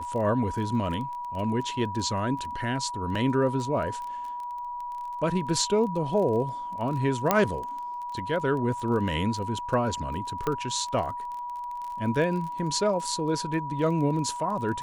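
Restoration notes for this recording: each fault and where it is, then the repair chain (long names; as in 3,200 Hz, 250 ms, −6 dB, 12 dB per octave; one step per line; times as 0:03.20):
surface crackle 22 per second −34 dBFS
whistle 970 Hz −32 dBFS
0:03.15: drop-out 4.2 ms
0:07.31: click −6 dBFS
0:10.47: click −15 dBFS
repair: click removal
notch filter 970 Hz, Q 30
repair the gap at 0:03.15, 4.2 ms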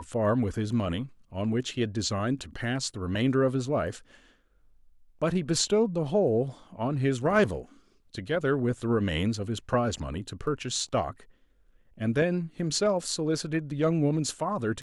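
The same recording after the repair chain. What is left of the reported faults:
0:07.31: click
0:10.47: click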